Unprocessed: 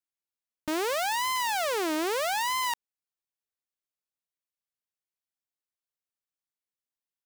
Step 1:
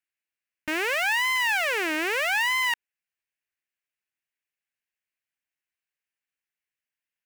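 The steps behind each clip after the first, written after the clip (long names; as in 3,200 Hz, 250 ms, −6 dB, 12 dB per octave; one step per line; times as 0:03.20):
flat-topped bell 2,100 Hz +12 dB 1.1 octaves
level −1.5 dB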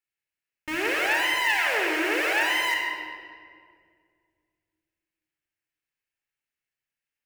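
rectangular room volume 3,900 cubic metres, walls mixed, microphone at 4.2 metres
level −5 dB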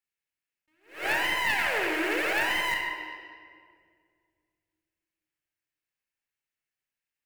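stylus tracing distortion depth 0.067 ms
dynamic equaliser 5,200 Hz, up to −5 dB, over −41 dBFS, Q 0.9
level that may rise only so fast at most 160 dB per second
level −2 dB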